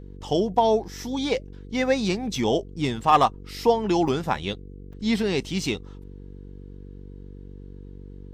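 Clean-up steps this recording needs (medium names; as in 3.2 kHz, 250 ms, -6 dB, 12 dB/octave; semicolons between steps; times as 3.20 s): clip repair -8.5 dBFS; de-hum 47.9 Hz, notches 10; interpolate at 4.08/4.93 s, 3.8 ms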